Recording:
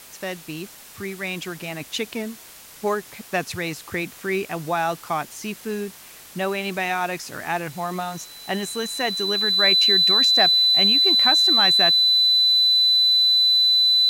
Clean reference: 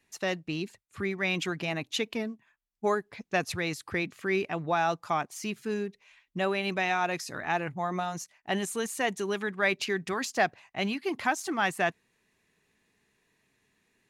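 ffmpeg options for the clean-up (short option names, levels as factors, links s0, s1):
-af "adeclick=t=4,bandreject=f=4000:w=30,afwtdn=0.0071,asetnsamples=n=441:p=0,asendcmd='1.8 volume volume -3.5dB',volume=1"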